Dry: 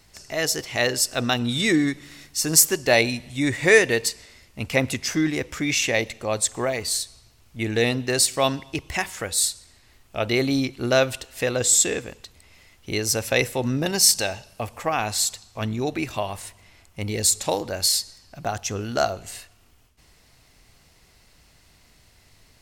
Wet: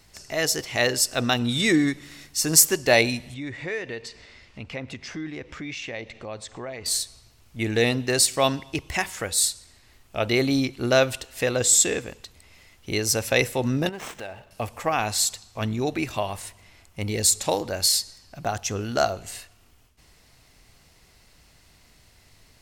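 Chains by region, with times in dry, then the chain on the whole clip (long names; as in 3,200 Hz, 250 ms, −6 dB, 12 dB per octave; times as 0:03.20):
0:03.34–0:06.86: low-pass filter 3,900 Hz + downward compressor 2 to 1, threshold −39 dBFS + one half of a high-frequency compander encoder only
0:13.89–0:14.51: running median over 9 samples + bass and treble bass −4 dB, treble −9 dB + downward compressor 2 to 1, threshold −38 dBFS
whole clip: no processing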